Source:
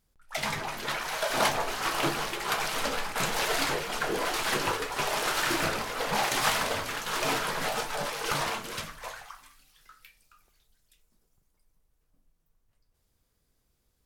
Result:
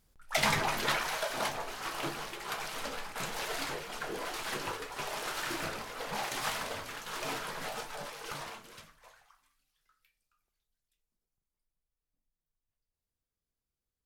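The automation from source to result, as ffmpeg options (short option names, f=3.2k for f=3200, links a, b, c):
-af "volume=3.5dB,afade=t=out:st=0.78:d=0.57:silence=0.251189,afade=t=out:st=7.81:d=1.19:silence=0.334965"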